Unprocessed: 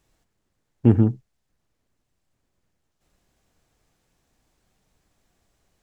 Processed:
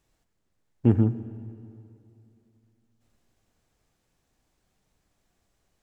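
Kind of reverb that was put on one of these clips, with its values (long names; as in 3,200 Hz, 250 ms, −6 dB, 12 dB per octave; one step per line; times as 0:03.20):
comb and all-pass reverb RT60 2.8 s, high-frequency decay 0.75×, pre-delay 45 ms, DRR 14.5 dB
level −4 dB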